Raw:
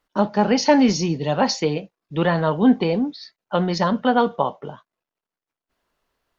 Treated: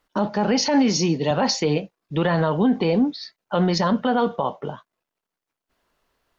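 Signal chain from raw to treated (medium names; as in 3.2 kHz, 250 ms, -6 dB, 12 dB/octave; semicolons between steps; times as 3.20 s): 0.61–1.31 s: high-pass 160 Hz; peak limiter -15 dBFS, peak gain reduction 12.5 dB; trim +3.5 dB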